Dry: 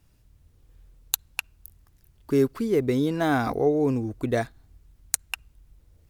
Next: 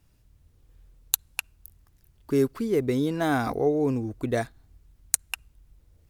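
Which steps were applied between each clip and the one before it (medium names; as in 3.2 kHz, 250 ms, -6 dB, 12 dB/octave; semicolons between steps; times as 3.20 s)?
dynamic bell 9.6 kHz, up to +5 dB, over -48 dBFS, Q 1; trim -1.5 dB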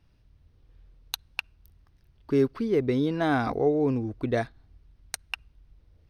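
Savitzky-Golay filter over 15 samples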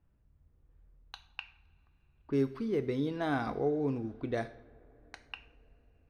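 two-slope reverb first 0.57 s, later 4.7 s, from -21 dB, DRR 10 dB; level-controlled noise filter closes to 1.6 kHz, open at -22.5 dBFS; trim -7.5 dB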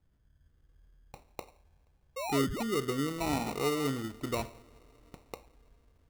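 painted sound rise, 2.16–2.63 s, 490–2500 Hz -36 dBFS; sample-and-hold 27×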